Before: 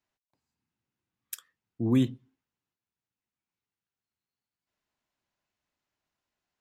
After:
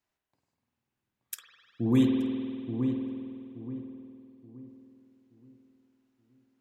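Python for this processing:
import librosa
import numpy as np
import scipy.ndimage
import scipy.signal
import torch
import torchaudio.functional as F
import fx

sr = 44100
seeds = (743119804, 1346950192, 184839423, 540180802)

y = fx.echo_filtered(x, sr, ms=876, feedback_pct=35, hz=1200.0, wet_db=-6)
y = fx.rev_spring(y, sr, rt60_s=2.4, pass_ms=(49,), chirp_ms=50, drr_db=1.0)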